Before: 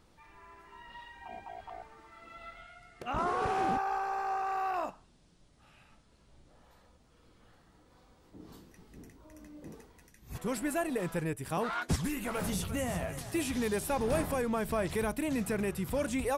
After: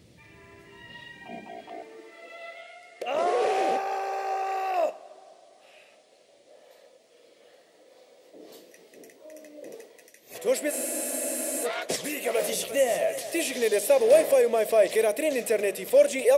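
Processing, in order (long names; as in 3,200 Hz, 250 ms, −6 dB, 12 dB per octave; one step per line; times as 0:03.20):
flat-topped bell 1,100 Hz −13 dB 1.2 octaves
mains-hum notches 50/100/150/200 Hz
convolution reverb RT60 3.1 s, pre-delay 33 ms, DRR 19.5 dB
high-pass filter sweep 110 Hz → 560 Hz, 0:00.89–0:02.35
frozen spectrum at 0:10.73, 0.92 s
level +8.5 dB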